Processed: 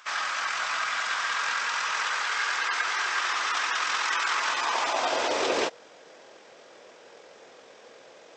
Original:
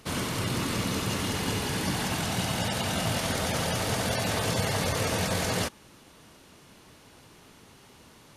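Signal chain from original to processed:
high-pass filter sweep 2,200 Hz → 840 Hz, 0:04.33–0:05.56
pitch shifter −10 semitones
level +3.5 dB

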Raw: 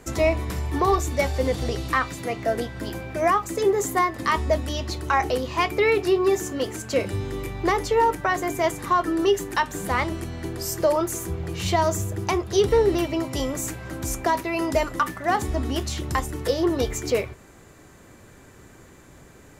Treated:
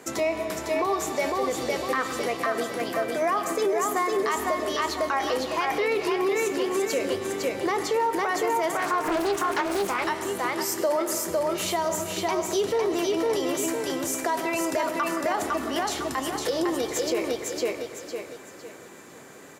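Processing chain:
repeating echo 505 ms, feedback 32%, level −3.5 dB
on a send at −13 dB: convolution reverb RT60 1.1 s, pre-delay 60 ms
on the sum: brickwall limiter −15.5 dBFS, peak gain reduction 8.5 dB
in parallel at 0 dB: downward compressor, threshold −31 dBFS, peak gain reduction 11.5 dB
on the sum: high-pass filter 260 Hz 12 dB per octave
0:08.77–0:10.06: highs frequency-modulated by the lows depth 0.47 ms
level −3 dB

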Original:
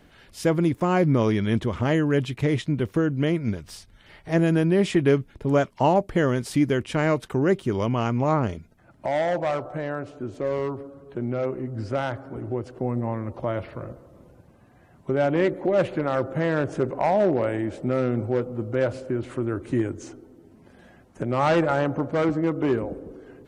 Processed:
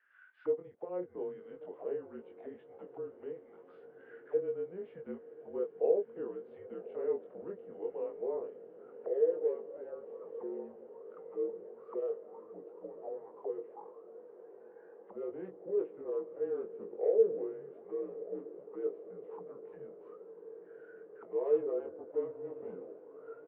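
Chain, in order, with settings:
single-sideband voice off tune −190 Hz 410–3,500 Hz
double-tracking delay 22 ms −3 dB
envelope filter 470–1,700 Hz, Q 14, down, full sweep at −26.5 dBFS
feedback delay with all-pass diffusion 1,091 ms, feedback 75%, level −15.5 dB

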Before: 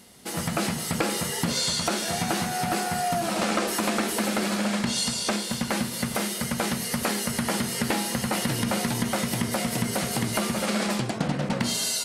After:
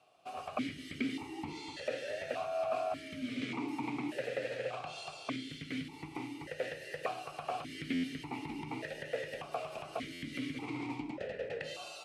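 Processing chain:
frequency shifter −82 Hz
buffer that repeats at 0:07.93/0:10.12, samples 512, times 8
formant filter that steps through the vowels 1.7 Hz
level +1 dB

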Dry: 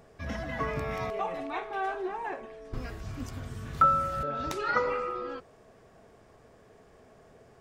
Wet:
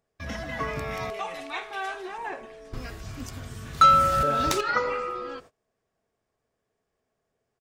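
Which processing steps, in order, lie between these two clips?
high-shelf EQ 2,100 Hz +7.5 dB
single-tap delay 85 ms −23.5 dB
noise gate −47 dBFS, range −24 dB
0:01.14–0:02.18: tilt shelving filter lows −5.5 dB, about 1,400 Hz
0:03.81–0:04.61: leveller curve on the samples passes 2

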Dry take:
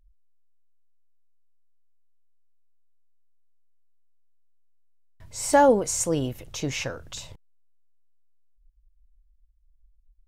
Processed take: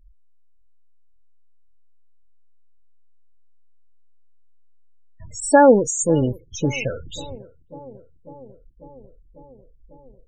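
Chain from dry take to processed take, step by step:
dynamic equaliser 800 Hz, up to −4 dB, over −29 dBFS, Q 1.2
0:05.40–0:06.52: noise gate −34 dBFS, range −17 dB
spectral peaks only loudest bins 16
on a send: bucket-brigade delay 546 ms, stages 4,096, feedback 74%, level −21.5 dB
on the sum: level +8 dB

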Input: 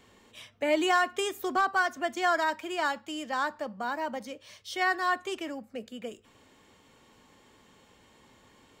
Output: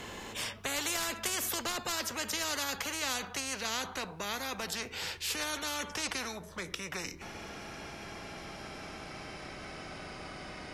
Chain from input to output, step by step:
gliding playback speed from 96% → 68%
every bin compressed towards the loudest bin 4 to 1

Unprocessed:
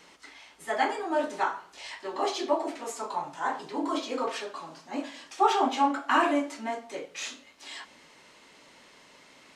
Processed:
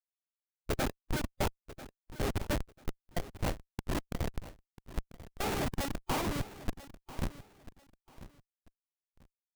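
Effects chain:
high-shelf EQ 6,900 Hz +10.5 dB
comparator with hysteresis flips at −23 dBFS
harmonic and percussive parts rebalanced harmonic −11 dB
formants moved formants −5 semitones
on a send: repeating echo 992 ms, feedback 24%, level −16 dB
on the sum: level +3 dB

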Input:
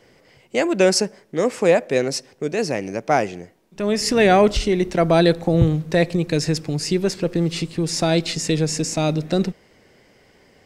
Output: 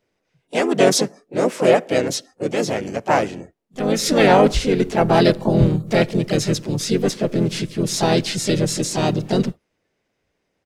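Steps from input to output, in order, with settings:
pitch-shifted copies added −5 semitones −5 dB, +3 semitones −6 dB, +4 semitones −6 dB
noise reduction from a noise print of the clip's start 20 dB
level −1.5 dB

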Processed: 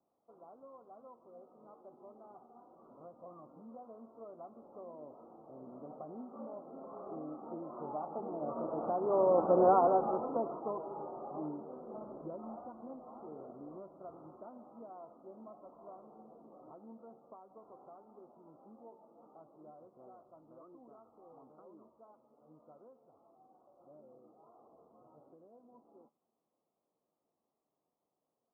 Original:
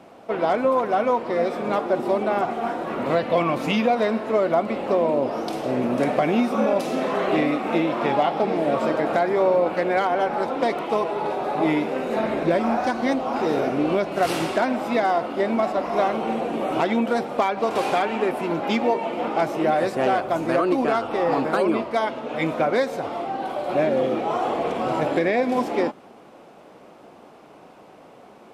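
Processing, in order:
source passing by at 0:09.65, 10 m/s, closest 2.4 metres
Butterworth low-pass 1,300 Hz 96 dB per octave
tuned comb filter 76 Hz, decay 0.25 s, harmonics all, mix 40%

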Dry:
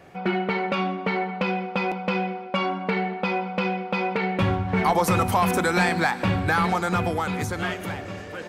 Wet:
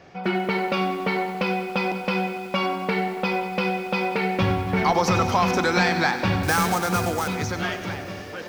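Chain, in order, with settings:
high shelf with overshoot 7,300 Hz −10.5 dB, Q 3
0:06.43–0:07.28: sample-rate reduction 7,300 Hz, jitter 20%
feedback echo at a low word length 94 ms, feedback 80%, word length 7 bits, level −13 dB

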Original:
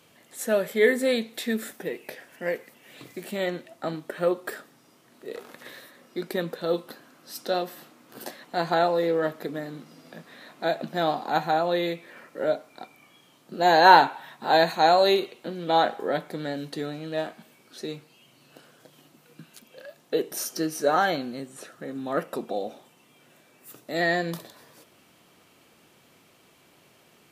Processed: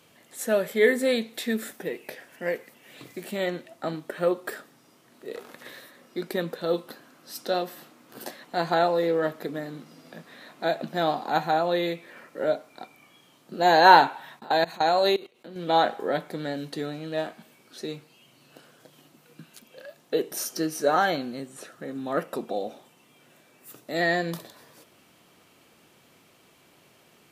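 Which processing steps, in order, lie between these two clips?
0:14.39–0:15.56: output level in coarse steps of 21 dB

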